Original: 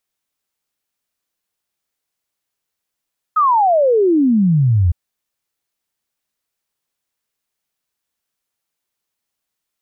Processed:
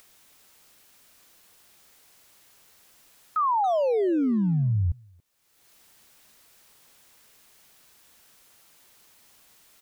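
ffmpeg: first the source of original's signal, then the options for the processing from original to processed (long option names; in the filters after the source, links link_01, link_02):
-f lavfi -i "aevalsrc='0.316*clip(min(t,1.56-t)/0.01,0,1)*sin(2*PI*1300*1.56/log(81/1300)*(exp(log(81/1300)*t/1.56)-1))':duration=1.56:sample_rate=44100"
-filter_complex "[0:a]alimiter=limit=-20dB:level=0:latency=1:release=14,acompressor=mode=upward:threshold=-39dB:ratio=2.5,asplit=2[link_01][link_02];[link_02]adelay=280,highpass=300,lowpass=3400,asoftclip=type=hard:threshold=-29.5dB,volume=-10dB[link_03];[link_01][link_03]amix=inputs=2:normalize=0"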